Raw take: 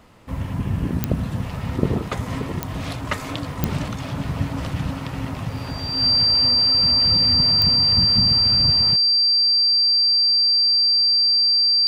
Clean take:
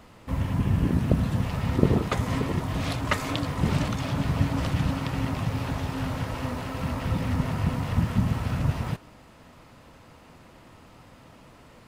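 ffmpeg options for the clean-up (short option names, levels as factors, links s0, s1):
-af "adeclick=t=4,bandreject=f=4700:w=30"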